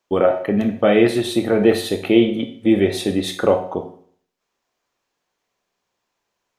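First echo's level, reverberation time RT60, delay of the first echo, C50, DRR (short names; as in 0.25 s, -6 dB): none, 0.55 s, none, 10.0 dB, 6.5 dB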